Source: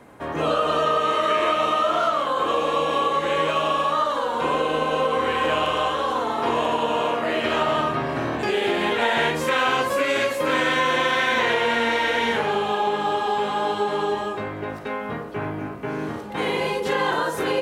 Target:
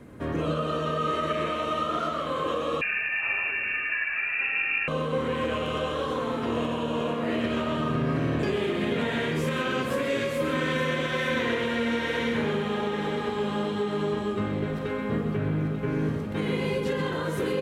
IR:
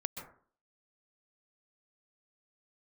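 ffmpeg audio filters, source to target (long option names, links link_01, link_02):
-filter_complex "[0:a]lowshelf=frequency=380:gain=11.5,alimiter=limit=-14dB:level=0:latency=1:release=456,equalizer=frequency=820:width_type=o:width=0.74:gain=-9,aecho=1:1:888|1776|2664|3552|4440:0.316|0.136|0.0585|0.0251|0.0108[link_01];[1:a]atrim=start_sample=2205,afade=type=out:start_time=0.19:duration=0.01,atrim=end_sample=8820[link_02];[link_01][link_02]afir=irnorm=-1:irlink=0,asettb=1/sr,asplit=3[link_03][link_04][link_05];[link_03]atrim=end=2.814[link_06];[link_04]atrim=start=2.81:end=4.88,asetpts=PTS-STARTPTS,afade=type=in:duration=0.004:curve=qsin,afade=type=out:start_time=2.066:duration=0.004:curve=qsin,lowpass=frequency=2500:width_type=q:width=0.5098,lowpass=frequency=2500:width_type=q:width=0.6013,lowpass=frequency=2500:width_type=q:width=0.9,lowpass=frequency=2500:width_type=q:width=2.563,afreqshift=-2900[link_07];[link_05]atrim=start=4.876[link_08];[link_06][link_07]acrossfade=duration=0.004:curve1=hsin:curve2=qsin[link_09];[link_09][link_08]acrossfade=duration=0.004:curve1=qsin:curve2=hsin,volume=-2.5dB"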